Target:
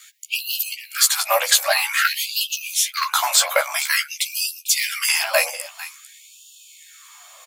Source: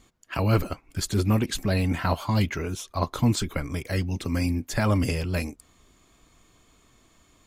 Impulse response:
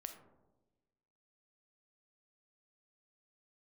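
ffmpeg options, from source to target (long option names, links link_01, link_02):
-filter_complex "[0:a]highpass=frequency=120:width=0.5412,highpass=frequency=120:width=1.3066,highshelf=frequency=11000:gain=12,acrossover=split=240[link_01][link_02];[link_01]asoftclip=type=tanh:threshold=-30dB[link_03];[link_03][link_02]amix=inputs=2:normalize=0,afreqshift=21,volume=19dB,asoftclip=hard,volume=-19dB,asplit=2[link_04][link_05];[link_05]adelay=14,volume=-4dB[link_06];[link_04][link_06]amix=inputs=2:normalize=0,aecho=1:1:449:0.168,alimiter=level_in=17dB:limit=-1dB:release=50:level=0:latency=1,afftfilt=real='re*gte(b*sr/1024,490*pow(2600/490,0.5+0.5*sin(2*PI*0.5*pts/sr)))':imag='im*gte(b*sr/1024,490*pow(2600/490,0.5+0.5*sin(2*PI*0.5*pts/sr)))':win_size=1024:overlap=0.75,volume=-2.5dB"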